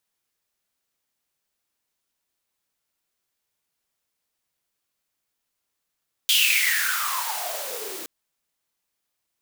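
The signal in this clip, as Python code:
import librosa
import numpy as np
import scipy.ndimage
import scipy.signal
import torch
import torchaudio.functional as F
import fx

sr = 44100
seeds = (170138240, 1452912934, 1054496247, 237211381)

y = fx.riser_noise(sr, seeds[0], length_s=1.77, colour='white', kind='highpass', start_hz=3300.0, end_hz=320.0, q=9.9, swell_db=-13.5, law='exponential')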